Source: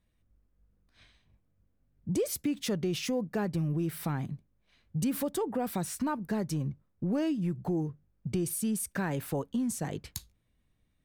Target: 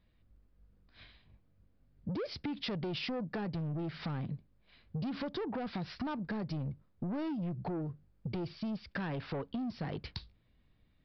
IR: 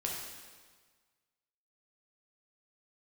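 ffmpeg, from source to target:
-af "aresample=11025,asoftclip=type=tanh:threshold=-32dB,aresample=44100,acompressor=threshold=-39dB:ratio=6,volume=4dB"

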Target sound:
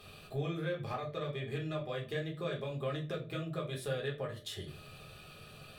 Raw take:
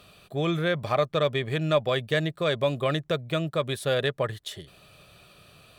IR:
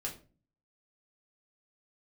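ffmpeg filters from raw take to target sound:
-filter_complex "[0:a]acompressor=threshold=-37dB:ratio=6[link_01];[1:a]atrim=start_sample=2205[link_02];[link_01][link_02]afir=irnorm=-1:irlink=0"

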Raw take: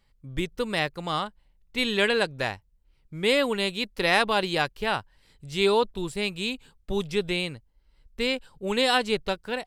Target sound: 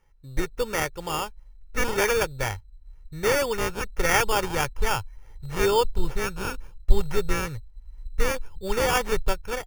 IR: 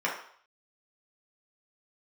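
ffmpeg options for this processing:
-af "asubboost=boost=8.5:cutoff=90,acrusher=samples=11:mix=1:aa=0.000001,aecho=1:1:2.2:0.44"

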